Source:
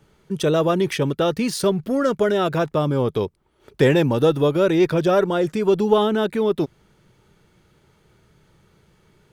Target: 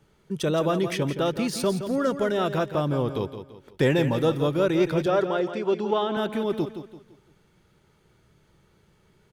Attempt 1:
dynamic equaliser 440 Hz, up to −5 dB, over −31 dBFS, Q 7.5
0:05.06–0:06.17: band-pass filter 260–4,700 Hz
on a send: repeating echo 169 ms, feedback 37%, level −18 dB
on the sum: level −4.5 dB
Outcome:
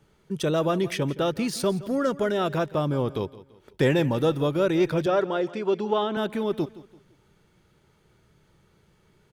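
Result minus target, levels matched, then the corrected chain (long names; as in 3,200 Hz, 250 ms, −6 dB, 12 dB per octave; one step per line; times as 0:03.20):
echo-to-direct −8 dB
dynamic equaliser 440 Hz, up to −5 dB, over −31 dBFS, Q 7.5
0:05.06–0:06.17: band-pass filter 260–4,700 Hz
on a send: repeating echo 169 ms, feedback 37%, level −10 dB
on the sum: level −4.5 dB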